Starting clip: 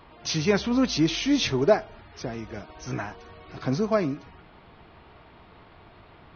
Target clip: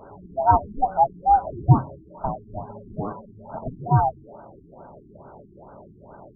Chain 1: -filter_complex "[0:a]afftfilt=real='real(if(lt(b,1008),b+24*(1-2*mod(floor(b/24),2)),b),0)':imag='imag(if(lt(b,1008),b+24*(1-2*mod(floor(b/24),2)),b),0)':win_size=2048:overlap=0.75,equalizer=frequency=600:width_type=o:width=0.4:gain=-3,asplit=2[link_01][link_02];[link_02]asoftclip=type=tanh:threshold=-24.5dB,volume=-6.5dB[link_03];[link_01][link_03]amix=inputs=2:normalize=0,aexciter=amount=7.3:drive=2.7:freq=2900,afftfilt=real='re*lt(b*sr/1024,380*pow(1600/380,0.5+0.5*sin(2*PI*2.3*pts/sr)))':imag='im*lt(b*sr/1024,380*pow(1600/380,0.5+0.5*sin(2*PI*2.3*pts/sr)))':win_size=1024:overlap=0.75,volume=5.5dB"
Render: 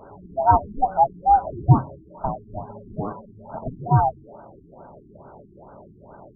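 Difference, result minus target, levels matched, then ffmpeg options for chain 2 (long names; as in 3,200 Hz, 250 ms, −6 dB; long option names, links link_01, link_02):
soft clipping: distortion −5 dB
-filter_complex "[0:a]afftfilt=real='real(if(lt(b,1008),b+24*(1-2*mod(floor(b/24),2)),b),0)':imag='imag(if(lt(b,1008),b+24*(1-2*mod(floor(b/24),2)),b),0)':win_size=2048:overlap=0.75,equalizer=frequency=600:width_type=o:width=0.4:gain=-3,asplit=2[link_01][link_02];[link_02]asoftclip=type=tanh:threshold=-33dB,volume=-6.5dB[link_03];[link_01][link_03]amix=inputs=2:normalize=0,aexciter=amount=7.3:drive=2.7:freq=2900,afftfilt=real='re*lt(b*sr/1024,380*pow(1600/380,0.5+0.5*sin(2*PI*2.3*pts/sr)))':imag='im*lt(b*sr/1024,380*pow(1600/380,0.5+0.5*sin(2*PI*2.3*pts/sr)))':win_size=1024:overlap=0.75,volume=5.5dB"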